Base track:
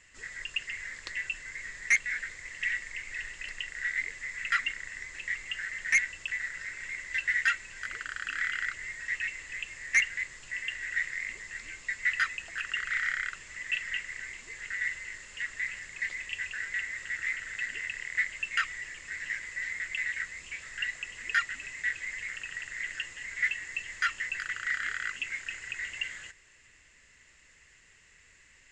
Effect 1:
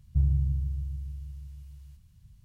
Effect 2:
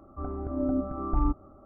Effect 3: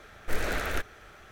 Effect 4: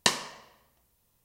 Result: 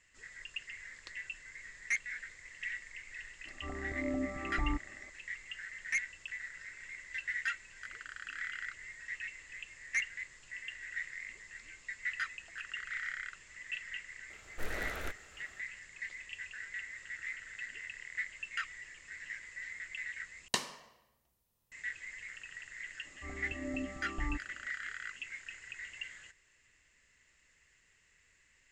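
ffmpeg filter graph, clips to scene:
-filter_complex "[2:a]asplit=2[s0][s1];[0:a]volume=0.355[s2];[s0]equalizer=f=780:t=o:w=2.1:g=3[s3];[s2]asplit=2[s4][s5];[s4]atrim=end=20.484[s6];[4:a]atrim=end=1.24,asetpts=PTS-STARTPTS,volume=0.355[s7];[s5]atrim=start=21.716[s8];[s3]atrim=end=1.65,asetpts=PTS-STARTPTS,volume=0.355,afade=t=in:d=0.004:c=hsin,afade=t=out:st=1.646:d=0.004:c=hsin,adelay=152145S[s9];[3:a]atrim=end=1.31,asetpts=PTS-STARTPTS,volume=0.335,afade=t=in:d=0.004:c=hsin,afade=t=out:st=1.306:d=0.004:c=hsin,adelay=14300[s10];[s1]atrim=end=1.65,asetpts=PTS-STARTPTS,volume=0.266,afade=t=in:d=0.004:c=hsin,afade=t=out:st=1.646:d=0.004:c=hsin,adelay=23050[s11];[s6][s7]acrossfade=d=0.004:c1=hsin:c2=hsin[s12];[s12][s8]acrossfade=d=0.004:c1=hsin:c2=hsin[s13];[s13][s9][s10][s11]amix=inputs=4:normalize=0"

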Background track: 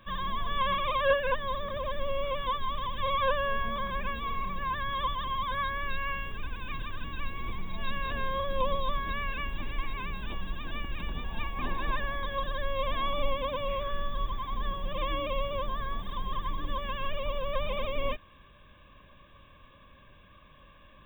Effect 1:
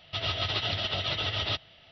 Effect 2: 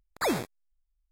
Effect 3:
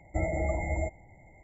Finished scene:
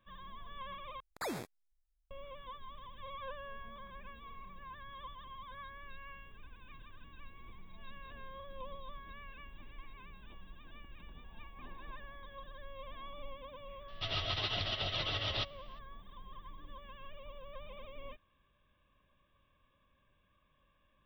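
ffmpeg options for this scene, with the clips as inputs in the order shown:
-filter_complex "[0:a]volume=0.133[s0];[2:a]acompressor=threshold=0.0178:ratio=2.5:attack=8.7:release=124:knee=1:detection=rms[s1];[s0]asplit=2[s2][s3];[s2]atrim=end=1.004[s4];[s1]atrim=end=1.11,asetpts=PTS-STARTPTS,volume=0.596[s5];[s3]atrim=start=2.106[s6];[1:a]atrim=end=1.91,asetpts=PTS-STARTPTS,volume=0.501,afade=t=in:d=0.004:c=hsin,afade=t=out:st=1.906:d=0.004:c=hsin,adelay=13880[s7];[s4][s5]acrossfade=d=0.004:c1=hsin:c2=hsin[s8];[s8][s6]acrossfade=d=0.004:c1=hsin:c2=hsin[s9];[s9][s7]amix=inputs=2:normalize=0"

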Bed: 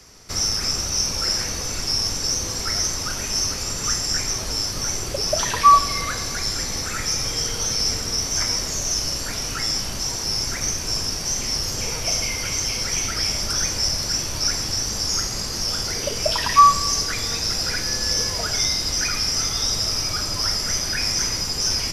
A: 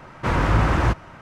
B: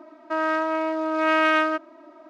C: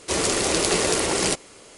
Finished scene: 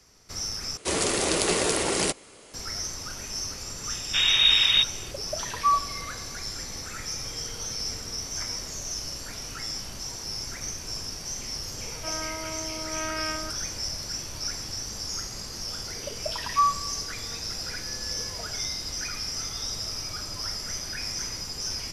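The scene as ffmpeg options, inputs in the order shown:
-filter_complex "[0:a]volume=0.316[s0];[1:a]lowpass=f=3200:t=q:w=0.5098,lowpass=f=3200:t=q:w=0.6013,lowpass=f=3200:t=q:w=0.9,lowpass=f=3200:t=q:w=2.563,afreqshift=-3800[s1];[s0]asplit=2[s2][s3];[s2]atrim=end=0.774[s4];[3:a]atrim=end=1.77,asetpts=PTS-STARTPTS,volume=0.708[s5];[s3]atrim=start=2.536[s6];[s1]atrim=end=1.21,asetpts=PTS-STARTPTS,volume=0.794,afade=t=in:d=0.004:c=hsin,afade=t=out:st=1.206:d=0.004:c=hsin,adelay=3900[s7];[2:a]atrim=end=2.29,asetpts=PTS-STARTPTS,volume=0.224,afade=t=in:d=0.004:c=hsin,afade=t=out:st=2.286:d=0.004:c=hsin,adelay=11730[s8];[s4][s5]acrossfade=d=0.004:c1=hsin:c2=hsin[s9];[s9][s6]acrossfade=d=0.004:c1=hsin:c2=hsin[s10];[s10][s7][s8]amix=inputs=3:normalize=0"

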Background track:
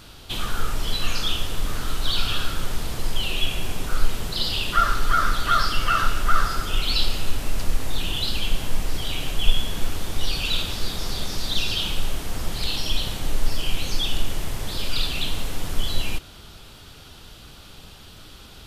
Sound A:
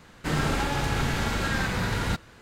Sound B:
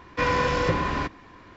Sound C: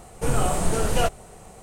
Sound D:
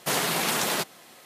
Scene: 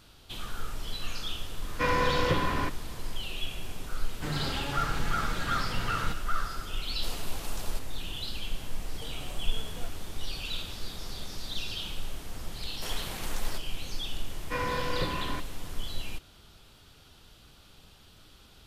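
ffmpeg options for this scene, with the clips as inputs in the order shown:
-filter_complex "[2:a]asplit=2[s0][s1];[4:a]asplit=2[s2][s3];[0:a]volume=0.282[s4];[1:a]flanger=delay=5.7:depth=2:regen=67:speed=0.87:shape=triangular[s5];[s2]equalizer=f=1900:w=1.6:g=-6.5[s6];[3:a]acompressor=threshold=0.0316:ratio=6:attack=3.2:release=140:knee=1:detection=peak[s7];[s3]acrusher=bits=8:mode=log:mix=0:aa=0.000001[s8];[s0]atrim=end=1.56,asetpts=PTS-STARTPTS,volume=0.668,afade=t=in:d=0.004:c=hsin,afade=t=out:st=1.556:d=0.004:c=hsin,adelay=1620[s9];[s5]atrim=end=2.41,asetpts=PTS-STARTPTS,volume=0.631,afade=t=in:d=0.004:c=hsin,afade=t=out:st=2.406:d=0.004:c=hsin,adelay=175077S[s10];[s6]atrim=end=1.25,asetpts=PTS-STARTPTS,volume=0.168,afade=t=in:d=0.004:c=hsin,afade=t=out:st=1.246:d=0.004:c=hsin,adelay=6960[s11];[s7]atrim=end=1.62,asetpts=PTS-STARTPTS,volume=0.282,afade=t=in:d=0.004:c=hsin,afade=t=out:st=1.616:d=0.004:c=hsin,adelay=8800[s12];[s8]atrim=end=1.25,asetpts=PTS-STARTPTS,volume=0.188,afade=t=in:d=0.004:c=hsin,afade=t=out:st=1.246:d=0.004:c=hsin,adelay=12750[s13];[s1]atrim=end=1.56,asetpts=PTS-STARTPTS,volume=0.376,afade=t=in:d=0.004:c=hsin,afade=t=out:st=1.556:d=0.004:c=hsin,adelay=14330[s14];[s4][s9][s10][s11][s12][s13][s14]amix=inputs=7:normalize=0"

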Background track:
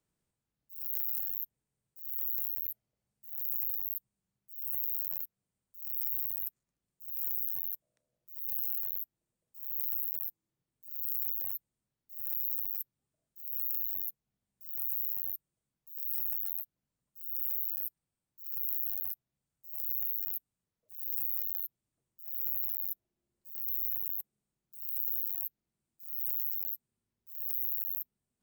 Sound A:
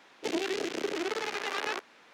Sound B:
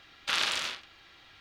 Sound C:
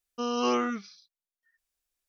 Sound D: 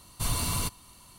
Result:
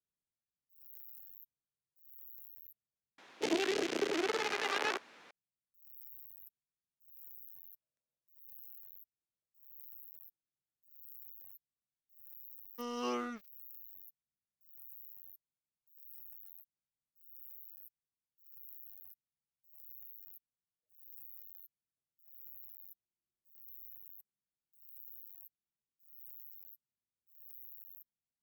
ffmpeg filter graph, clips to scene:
-filter_complex "[0:a]volume=0.119[s0];[3:a]aeval=exprs='sgn(val(0))*max(abs(val(0))-0.00668,0)':c=same[s1];[s0]asplit=2[s2][s3];[s2]atrim=end=3.184[s4];[1:a]atrim=end=2.13,asetpts=PTS-STARTPTS,volume=0.891[s5];[s3]atrim=start=5.306[s6];[s1]atrim=end=2.08,asetpts=PTS-STARTPTS,volume=0.335,afade=t=in:d=0.004:c=hsin,afade=t=out:st=2.076:d=0.004:c=hsin,adelay=12600[s7];[s4][s5]acrossfade=d=0.004:c1=hsin:c2=hsin[s8];[s8][s6]acrossfade=d=0.004:c1=hsin:c2=hsin[s9];[s9][s7]amix=inputs=2:normalize=0"

